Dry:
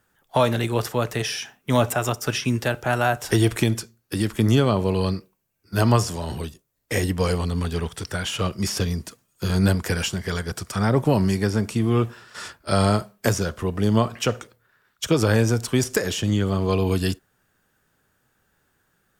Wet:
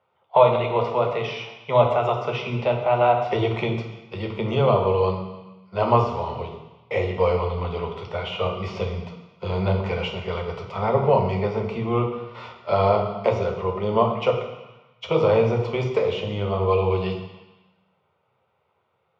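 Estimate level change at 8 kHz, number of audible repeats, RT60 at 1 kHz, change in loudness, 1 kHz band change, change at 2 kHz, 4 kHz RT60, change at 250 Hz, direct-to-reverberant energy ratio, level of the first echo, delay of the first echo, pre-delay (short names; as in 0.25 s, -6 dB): under -25 dB, none, 1.2 s, 0.0 dB, +4.5 dB, -4.5 dB, 1.2 s, -6.5 dB, 2.0 dB, none, none, 3 ms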